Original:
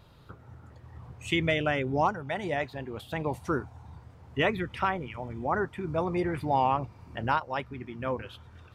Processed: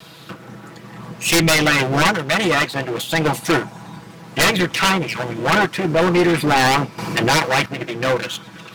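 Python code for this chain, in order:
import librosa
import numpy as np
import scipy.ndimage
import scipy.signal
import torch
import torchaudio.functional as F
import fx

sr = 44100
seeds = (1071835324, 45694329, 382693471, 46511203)

y = fx.lower_of_two(x, sr, delay_ms=6.1)
y = scipy.signal.sosfilt(scipy.signal.bessel(2, 290.0, 'highpass', norm='mag', fs=sr, output='sos'), y)
y = fx.peak_eq(y, sr, hz=730.0, db=-8.0, octaves=2.6)
y = fx.fold_sine(y, sr, drive_db=14, ceiling_db=-16.5)
y = fx.env_flatten(y, sr, amount_pct=50, at=(6.98, 7.66))
y = y * 10.0 ** (6.5 / 20.0)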